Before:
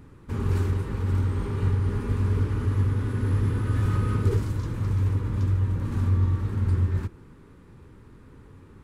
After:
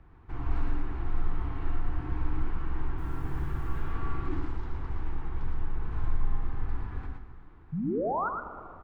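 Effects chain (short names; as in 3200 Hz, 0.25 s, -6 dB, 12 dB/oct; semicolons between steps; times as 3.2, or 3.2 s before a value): LPF 2400 Hz 12 dB/oct; bell 310 Hz -9 dB 0.55 oct; 2.98–3.81 requantised 10-bit, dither none; 7.72–8.29 painted sound rise 250–1600 Hz -27 dBFS; frequency shift -110 Hz; echo 0.114 s -4 dB; plate-style reverb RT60 2.1 s, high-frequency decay 0.8×, DRR 8 dB; gain -4 dB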